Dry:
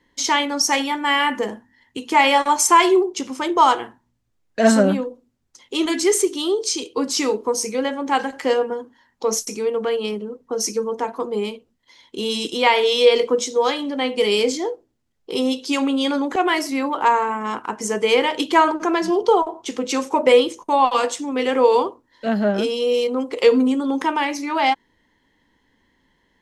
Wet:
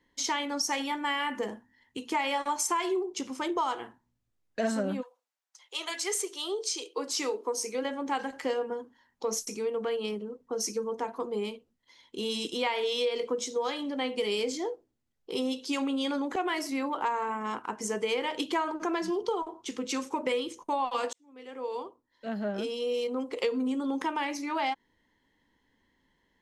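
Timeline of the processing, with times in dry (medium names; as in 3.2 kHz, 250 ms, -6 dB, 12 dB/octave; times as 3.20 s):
5.01–7.83 s: high-pass 840 Hz -> 240 Hz 24 dB/octave
19.04–20.58 s: peaking EQ 660 Hz -7.5 dB
21.13–23.40 s: fade in
whole clip: compression 6:1, threshold -18 dBFS; trim -8 dB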